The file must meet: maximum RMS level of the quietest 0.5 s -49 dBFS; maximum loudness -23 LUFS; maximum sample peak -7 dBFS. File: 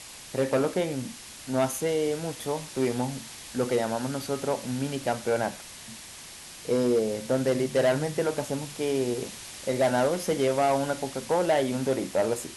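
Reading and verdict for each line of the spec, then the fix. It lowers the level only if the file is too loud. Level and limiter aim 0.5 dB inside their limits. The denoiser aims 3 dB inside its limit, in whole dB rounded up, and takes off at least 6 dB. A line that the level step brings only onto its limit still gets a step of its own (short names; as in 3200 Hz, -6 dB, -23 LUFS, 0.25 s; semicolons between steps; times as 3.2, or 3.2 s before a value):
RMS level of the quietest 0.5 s -44 dBFS: fail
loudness -27.5 LUFS: OK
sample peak -13.5 dBFS: OK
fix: denoiser 8 dB, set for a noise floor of -44 dBFS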